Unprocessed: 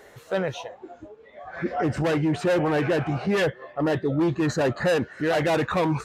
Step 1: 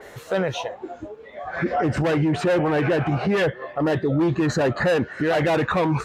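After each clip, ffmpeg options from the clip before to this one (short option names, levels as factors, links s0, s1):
-af "alimiter=limit=0.0841:level=0:latency=1:release=73,adynamicequalizer=threshold=0.00316:dfrequency=4200:dqfactor=0.7:tfrequency=4200:tqfactor=0.7:attack=5:release=100:ratio=0.375:range=3:mode=cutabove:tftype=highshelf,volume=2.37"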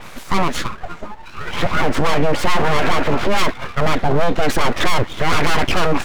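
-af "aeval=exprs='abs(val(0))':c=same,volume=2.66"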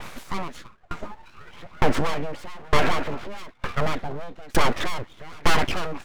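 -af "aeval=exprs='val(0)*pow(10,-30*if(lt(mod(1.1*n/s,1),2*abs(1.1)/1000),1-mod(1.1*n/s,1)/(2*abs(1.1)/1000),(mod(1.1*n/s,1)-2*abs(1.1)/1000)/(1-2*abs(1.1)/1000))/20)':c=same"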